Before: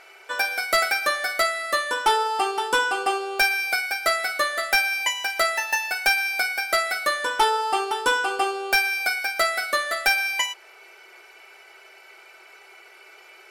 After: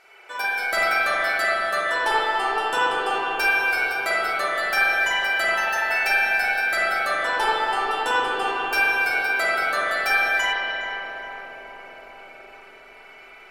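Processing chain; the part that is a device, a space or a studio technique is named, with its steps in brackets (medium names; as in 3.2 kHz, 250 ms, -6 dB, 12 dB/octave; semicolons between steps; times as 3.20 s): dub delay into a spring reverb (filtered feedback delay 412 ms, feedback 81%, low-pass 1.1 kHz, level -6 dB; spring tank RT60 2.5 s, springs 40/45 ms, chirp 65 ms, DRR -8.5 dB); trim -7 dB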